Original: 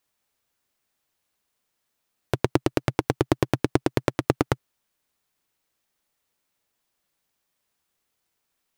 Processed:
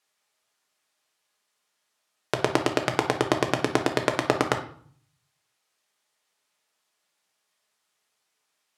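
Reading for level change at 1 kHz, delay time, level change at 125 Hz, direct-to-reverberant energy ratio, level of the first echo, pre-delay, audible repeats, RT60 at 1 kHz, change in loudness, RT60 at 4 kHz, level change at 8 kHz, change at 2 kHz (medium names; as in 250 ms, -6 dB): +3.5 dB, no echo, -6.0 dB, 3.5 dB, no echo, 5 ms, no echo, 0.55 s, 0.0 dB, 0.45 s, +3.5 dB, +4.5 dB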